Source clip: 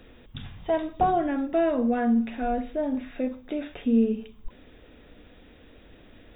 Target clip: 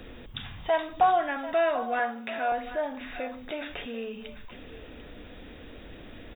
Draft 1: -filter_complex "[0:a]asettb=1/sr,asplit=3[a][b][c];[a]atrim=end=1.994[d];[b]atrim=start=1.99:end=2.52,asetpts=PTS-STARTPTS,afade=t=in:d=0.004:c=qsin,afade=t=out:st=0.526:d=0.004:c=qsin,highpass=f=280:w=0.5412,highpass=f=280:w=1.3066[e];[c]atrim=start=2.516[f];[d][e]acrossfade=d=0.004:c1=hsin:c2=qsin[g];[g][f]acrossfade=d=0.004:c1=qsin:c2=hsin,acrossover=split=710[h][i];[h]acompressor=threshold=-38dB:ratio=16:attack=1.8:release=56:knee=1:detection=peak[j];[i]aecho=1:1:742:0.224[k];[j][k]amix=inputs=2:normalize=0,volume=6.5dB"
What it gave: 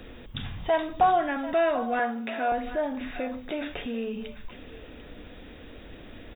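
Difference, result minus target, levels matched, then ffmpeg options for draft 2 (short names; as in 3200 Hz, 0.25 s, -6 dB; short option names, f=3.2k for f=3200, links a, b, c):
compressor: peak gain reduction -7.5 dB
-filter_complex "[0:a]asettb=1/sr,asplit=3[a][b][c];[a]atrim=end=1.994[d];[b]atrim=start=1.99:end=2.52,asetpts=PTS-STARTPTS,afade=t=in:d=0.004:c=qsin,afade=t=out:st=0.526:d=0.004:c=qsin,highpass=f=280:w=0.5412,highpass=f=280:w=1.3066[e];[c]atrim=start=2.516[f];[d][e]acrossfade=d=0.004:c1=hsin:c2=qsin[g];[g][f]acrossfade=d=0.004:c1=qsin:c2=hsin,acrossover=split=710[h][i];[h]acompressor=threshold=-46dB:ratio=16:attack=1.8:release=56:knee=1:detection=peak[j];[i]aecho=1:1:742:0.224[k];[j][k]amix=inputs=2:normalize=0,volume=6.5dB"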